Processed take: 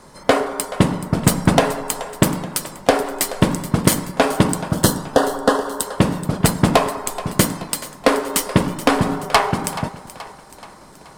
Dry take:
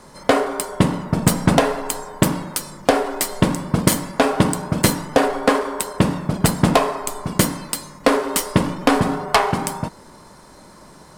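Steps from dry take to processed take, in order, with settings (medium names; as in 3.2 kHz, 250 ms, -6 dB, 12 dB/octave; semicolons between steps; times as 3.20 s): harmonic-percussive split harmonic -4 dB; 4.67–5.83 s: Butterworth band-stop 2.3 kHz, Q 2; two-band feedback delay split 440 Hz, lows 111 ms, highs 428 ms, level -15 dB; trim +1.5 dB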